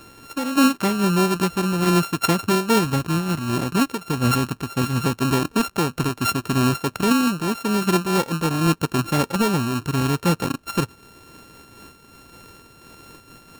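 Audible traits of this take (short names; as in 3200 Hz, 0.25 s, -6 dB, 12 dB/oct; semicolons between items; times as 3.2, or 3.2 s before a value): a buzz of ramps at a fixed pitch in blocks of 32 samples; noise-modulated level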